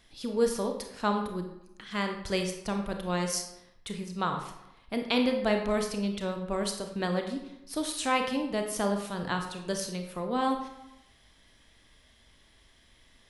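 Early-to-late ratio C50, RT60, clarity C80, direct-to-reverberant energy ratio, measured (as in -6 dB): 6.5 dB, 0.90 s, 9.0 dB, 4.0 dB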